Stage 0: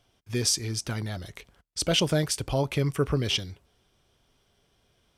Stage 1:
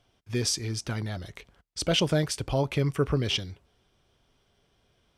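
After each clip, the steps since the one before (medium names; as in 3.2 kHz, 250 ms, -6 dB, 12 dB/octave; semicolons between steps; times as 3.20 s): treble shelf 7.4 kHz -8.5 dB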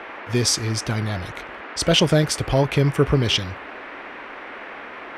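band noise 240–2200 Hz -44 dBFS; trim +7.5 dB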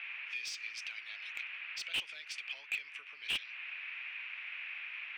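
compression 3:1, threshold -27 dBFS, peak gain reduction 11.5 dB; ladder band-pass 2.7 kHz, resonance 75%; slew-rate limiter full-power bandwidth 62 Hz; trim +2.5 dB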